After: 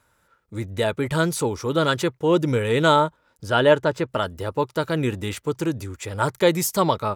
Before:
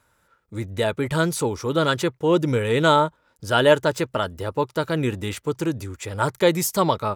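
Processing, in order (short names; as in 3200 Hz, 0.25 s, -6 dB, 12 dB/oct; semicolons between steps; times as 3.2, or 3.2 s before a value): 3.46–4.08 LPF 4000 Hz -> 2100 Hz 6 dB/oct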